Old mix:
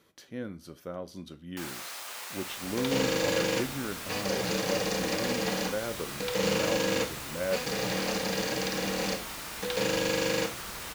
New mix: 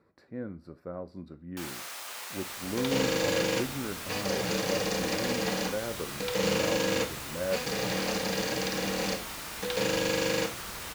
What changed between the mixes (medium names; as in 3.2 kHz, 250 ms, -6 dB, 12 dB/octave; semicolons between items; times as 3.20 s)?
speech: add boxcar filter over 14 samples; master: add peaking EQ 87 Hz +3 dB 0.42 oct